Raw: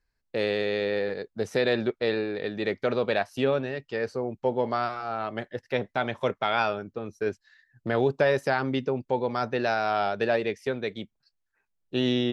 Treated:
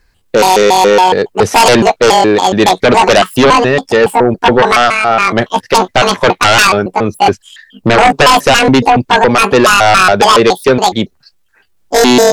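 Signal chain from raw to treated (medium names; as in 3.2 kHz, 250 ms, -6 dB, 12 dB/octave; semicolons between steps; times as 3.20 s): pitch shift switched off and on +10.5 st, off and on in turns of 140 ms; sine folder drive 12 dB, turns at -10 dBFS; trim +8 dB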